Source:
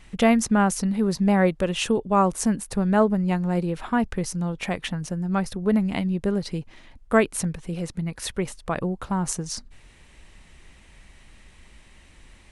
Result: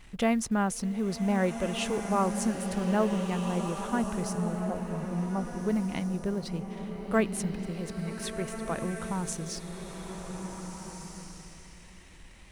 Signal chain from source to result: G.711 law mismatch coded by mu; 4.35–5.61 steep low-pass 1200 Hz 72 dB/oct; bloom reverb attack 1.72 s, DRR 5 dB; gain -8 dB

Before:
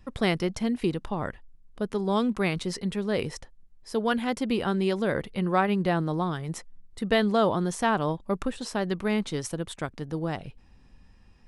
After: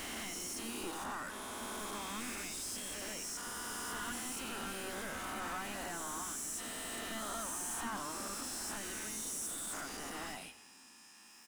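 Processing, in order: spectral swells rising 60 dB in 2.16 s; differentiator; soft clip -27 dBFS, distortion -16 dB; overdrive pedal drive 33 dB, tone 1900 Hz, clips at -27 dBFS; ten-band EQ 125 Hz -11 dB, 250 Hz +9 dB, 500 Hz -12 dB, 1000 Hz -3 dB, 2000 Hz -10 dB, 4000 Hz -11 dB, 8000 Hz +4 dB; frequency-shifting echo 93 ms, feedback 48%, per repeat +46 Hz, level -14 dB; harmoniser +5 st -12 dB; gain +2 dB

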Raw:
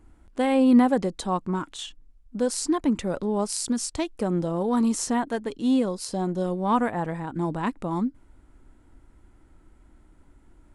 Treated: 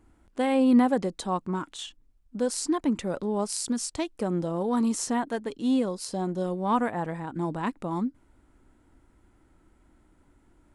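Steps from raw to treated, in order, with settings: low shelf 66 Hz -8.5 dB; gain -2 dB

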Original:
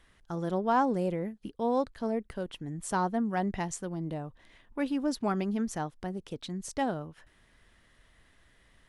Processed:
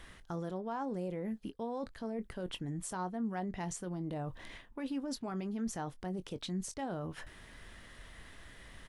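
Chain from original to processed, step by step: reverse; compressor 10:1, threshold -41 dBFS, peak gain reduction 20 dB; reverse; limiter -40.5 dBFS, peak gain reduction 10 dB; doubler 22 ms -13 dB; gain +9.5 dB

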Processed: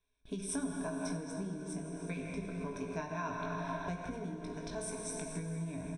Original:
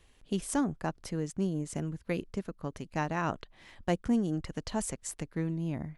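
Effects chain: doubler 19 ms -6.5 dB; speakerphone echo 0.16 s, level -11 dB; plate-style reverb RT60 4 s, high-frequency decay 0.8×, DRR 1.5 dB; compressor 6:1, threshold -36 dBFS, peak gain reduction 13.5 dB; ripple EQ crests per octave 1.6, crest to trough 17 dB; gate with hold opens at -41 dBFS; low shelf 210 Hz -3 dB; gain -2 dB

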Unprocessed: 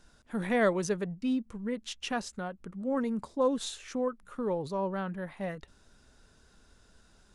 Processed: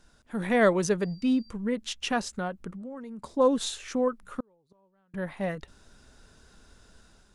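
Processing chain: 2.72–3.24 compressor 6:1, threshold -44 dBFS, peak gain reduction 16.5 dB; 4.4–5.14 flipped gate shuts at -31 dBFS, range -39 dB; AGC gain up to 5 dB; 1–1.5 whine 4700 Hz -55 dBFS

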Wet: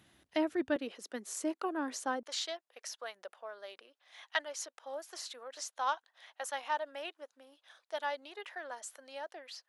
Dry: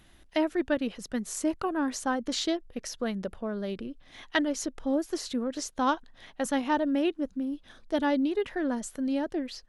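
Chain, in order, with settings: HPF 82 Hz 24 dB/oct, from 0.76 s 300 Hz, from 2.23 s 630 Hz; gain -5 dB

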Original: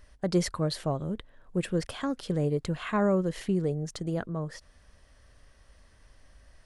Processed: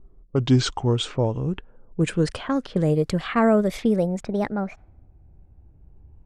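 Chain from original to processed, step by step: speed glide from 65% -> 148%; low-pass opened by the level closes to 310 Hz, open at -25.5 dBFS; gain +7 dB

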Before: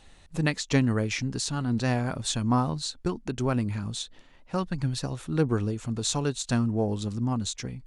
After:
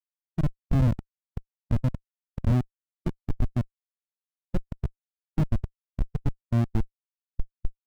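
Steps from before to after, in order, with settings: on a send: tapped delay 0.182/0.572 s -15.5/-14.5 dB; on the sum: treble ducked by the level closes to 350 Hz, closed at -21.5 dBFS; Schmitt trigger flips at -23 dBFS; spectral expander 1.5:1; gain +9 dB

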